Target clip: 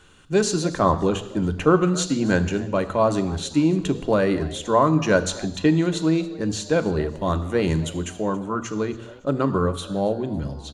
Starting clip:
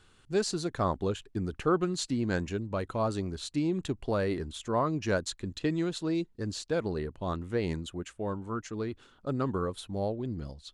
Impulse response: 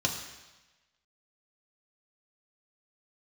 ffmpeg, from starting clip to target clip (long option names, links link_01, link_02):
-filter_complex "[0:a]asettb=1/sr,asplit=3[link_01][link_02][link_03];[link_01]atrim=end=7.114[link_04];[link_02]atrim=start=7.11:end=8.22,asetpts=PTS-STARTPTS,afade=type=in:duration=0.004:curve=qsin,afade=type=out:start_time=1.106:duration=0.004:curve=qsin,highshelf=frequency=8900:gain=10.5[link_05];[link_03]atrim=start=8.216[link_06];[link_04][link_05]acrossfade=duration=0.004:curve1=hsin:curve2=qsin[link_07];[link_07][link_06]acrossfade=duration=0.004:curve1=qsin:curve2=hsin,asplit=4[link_08][link_09][link_10][link_11];[link_09]adelay=278,afreqshift=140,volume=-21dB[link_12];[link_10]adelay=556,afreqshift=280,volume=-29.4dB[link_13];[link_11]adelay=834,afreqshift=420,volume=-37.8dB[link_14];[link_08][link_12][link_13][link_14]amix=inputs=4:normalize=0,asplit=2[link_15][link_16];[1:a]atrim=start_sample=2205,afade=type=out:start_time=0.33:duration=0.01,atrim=end_sample=14994[link_17];[link_16][link_17]afir=irnorm=-1:irlink=0,volume=-11dB[link_18];[link_15][link_18]amix=inputs=2:normalize=0,volume=6.5dB"